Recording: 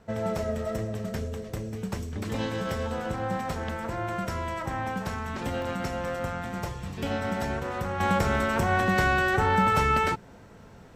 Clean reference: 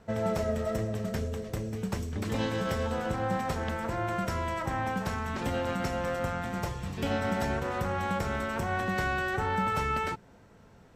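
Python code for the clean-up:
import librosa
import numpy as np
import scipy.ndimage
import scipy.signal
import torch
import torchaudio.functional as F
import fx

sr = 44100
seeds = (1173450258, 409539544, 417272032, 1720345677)

y = fx.fix_interpolate(x, sr, at_s=(3.5, 5.62), length_ms=1.4)
y = fx.fix_level(y, sr, at_s=8.0, step_db=-6.5)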